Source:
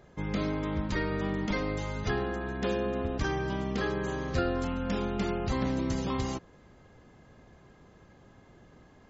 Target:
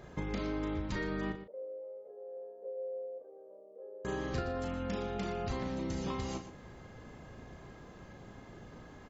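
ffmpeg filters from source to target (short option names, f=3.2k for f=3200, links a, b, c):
-filter_complex "[0:a]acompressor=threshold=-38dB:ratio=6,asettb=1/sr,asplit=3[a][b][c];[a]atrim=end=1.324[d];[b]atrim=start=1.32:end=4.05,asetpts=PTS-STARTPTS,afade=t=in:d=0.004:c=qsin,afade=t=out:st=2.726:d=0.004:c=qsin,asuperpass=centerf=520:order=4:qfactor=4.7[e];[c]atrim=start=4.046[f];[d][e]acrossfade=d=0.004:c1=hsin:c2=qsin[g];[g][f]acrossfade=d=0.004:c1=qsin:c2=hsin,asplit=2[h][i];[i]adelay=36,volume=-7dB[j];[h][j]amix=inputs=2:normalize=0,aecho=1:1:119:0.251,volume=4dB"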